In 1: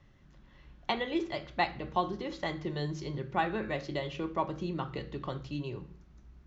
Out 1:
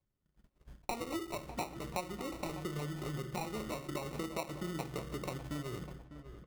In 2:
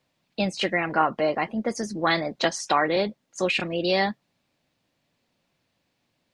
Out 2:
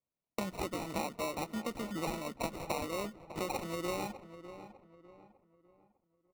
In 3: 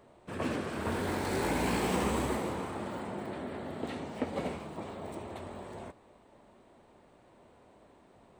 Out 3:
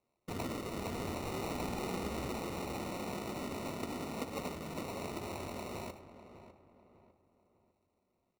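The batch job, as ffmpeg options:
-filter_complex "[0:a]agate=range=-26dB:threshold=-53dB:ratio=16:detection=peak,acompressor=threshold=-39dB:ratio=4,acrusher=samples=27:mix=1:aa=0.000001,asplit=2[a][b];[b]adelay=601,lowpass=f=2k:p=1,volume=-12dB,asplit=2[c][d];[d]adelay=601,lowpass=f=2k:p=1,volume=0.38,asplit=2[e][f];[f]adelay=601,lowpass=f=2k:p=1,volume=0.38,asplit=2[g][h];[h]adelay=601,lowpass=f=2k:p=1,volume=0.38[i];[a][c][e][g][i]amix=inputs=5:normalize=0,volume=2dB"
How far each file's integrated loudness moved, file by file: -5.5, -13.5, -5.0 LU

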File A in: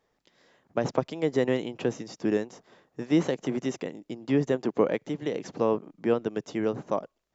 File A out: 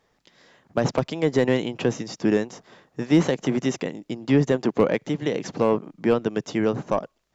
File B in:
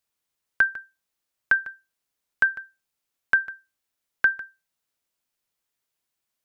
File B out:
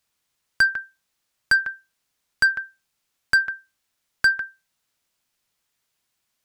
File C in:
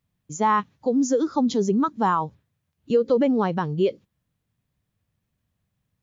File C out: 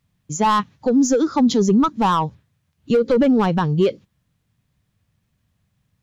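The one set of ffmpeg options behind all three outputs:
-filter_complex "[0:a]asplit=2[a][b];[b]highpass=f=720:p=1,volume=13dB,asoftclip=type=tanh:threshold=-8.5dB[c];[a][c]amix=inputs=2:normalize=0,lowpass=f=5.3k:p=1,volume=-6dB,volume=12.5dB,asoftclip=hard,volume=-12.5dB,bass=f=250:g=13,treble=f=4k:g=3"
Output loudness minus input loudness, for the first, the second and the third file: +5.0, +2.0, +4.5 LU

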